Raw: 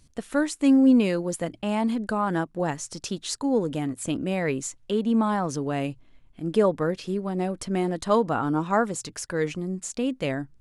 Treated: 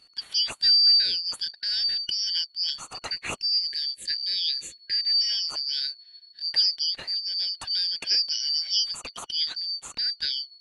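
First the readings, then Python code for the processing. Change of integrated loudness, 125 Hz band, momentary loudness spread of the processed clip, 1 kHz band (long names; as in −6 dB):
+2.0 dB, below −20 dB, 11 LU, −17.5 dB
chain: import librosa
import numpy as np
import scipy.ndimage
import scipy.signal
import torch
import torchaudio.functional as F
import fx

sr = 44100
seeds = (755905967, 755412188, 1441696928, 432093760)

y = fx.band_shuffle(x, sr, order='4321')
y = fx.spec_box(y, sr, start_s=3.56, length_s=1.64, low_hz=600.0, high_hz=1600.0, gain_db=-22)
y = fx.high_shelf_res(y, sr, hz=4700.0, db=-6.5, q=1.5)
y = F.gain(torch.from_numpy(y), 1.5).numpy()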